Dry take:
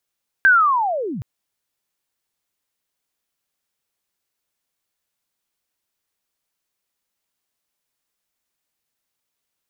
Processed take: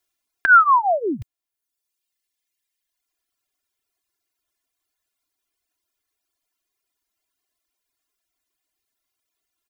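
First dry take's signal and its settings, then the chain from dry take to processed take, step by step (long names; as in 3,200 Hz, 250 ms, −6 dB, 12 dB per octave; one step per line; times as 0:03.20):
glide linear 1,600 Hz → 97 Hz −8 dBFS → −26 dBFS 0.77 s
reverb reduction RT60 1.6 s
comb filter 2.9 ms, depth 83%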